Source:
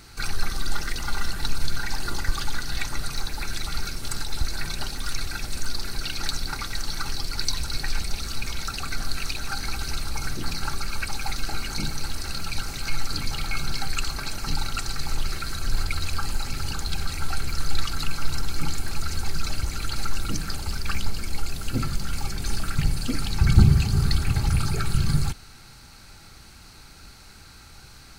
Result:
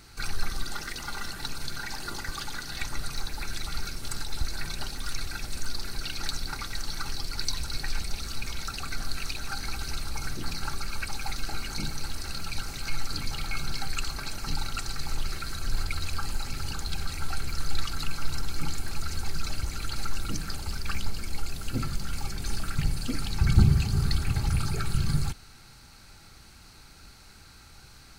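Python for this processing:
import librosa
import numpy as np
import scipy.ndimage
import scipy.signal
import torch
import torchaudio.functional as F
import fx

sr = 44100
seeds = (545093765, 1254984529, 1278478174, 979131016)

y = fx.low_shelf(x, sr, hz=83.0, db=-10.5, at=(0.63, 2.82))
y = y * 10.0 ** (-4.0 / 20.0)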